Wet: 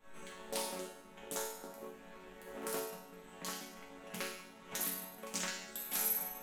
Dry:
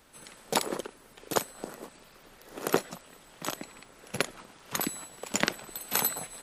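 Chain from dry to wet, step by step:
adaptive Wiener filter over 9 samples
on a send at −11 dB: convolution reverb RT60 0.95 s, pre-delay 6 ms
on the sum: downward compressor 2.5 to 1, threshold −50 dBFS, peak gain reduction 20 dB
in parallel at −6 dB: slack as between gear wheels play −55 dBFS
on the sum: high-shelf EQ 5,000 Hz +11.5 dB
resonators tuned to a chord F#3 minor, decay 0.81 s
leveller curve on the samples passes 1
highs frequency-modulated by the lows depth 0.26 ms
level +18 dB

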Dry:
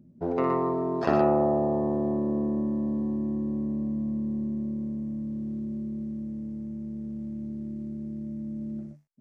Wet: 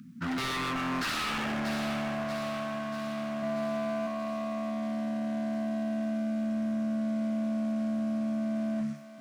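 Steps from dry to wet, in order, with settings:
elliptic band-stop filter 240–1,300 Hz, stop band 40 dB
spectral tilt +3 dB per octave
mid-hump overdrive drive 30 dB, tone 1,200 Hz, clips at −17.5 dBFS
wave folding −29 dBFS
0:03.38–0:04.07: double-tracking delay 47 ms −2.5 dB
feedback echo with a high-pass in the loop 636 ms, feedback 60%, high-pass 900 Hz, level −7 dB
level +1.5 dB

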